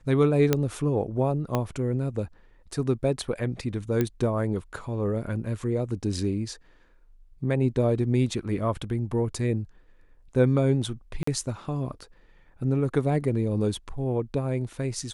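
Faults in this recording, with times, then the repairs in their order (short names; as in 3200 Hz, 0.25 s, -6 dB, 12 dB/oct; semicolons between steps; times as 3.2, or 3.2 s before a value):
0.53 pop -7 dBFS
1.55 pop -12 dBFS
4.01 pop -12 dBFS
11.23–11.27 gap 44 ms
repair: de-click; interpolate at 11.23, 44 ms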